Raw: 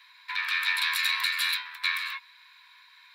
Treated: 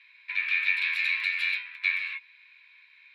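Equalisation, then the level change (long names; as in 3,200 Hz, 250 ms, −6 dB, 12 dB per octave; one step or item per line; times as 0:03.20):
resonant band-pass 2,400 Hz, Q 5.2
+5.5 dB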